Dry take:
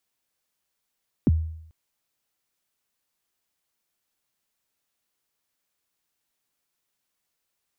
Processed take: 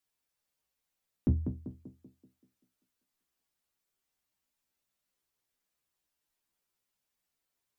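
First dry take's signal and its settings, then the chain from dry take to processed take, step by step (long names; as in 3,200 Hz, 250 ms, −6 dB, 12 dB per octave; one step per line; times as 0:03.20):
synth kick length 0.44 s, from 340 Hz, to 80 Hz, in 29 ms, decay 0.72 s, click off, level −13 dB
low-shelf EQ 73 Hz +7.5 dB
stiff-string resonator 62 Hz, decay 0.22 s, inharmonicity 0.002
tape delay 193 ms, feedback 55%, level −4 dB, low-pass 1,000 Hz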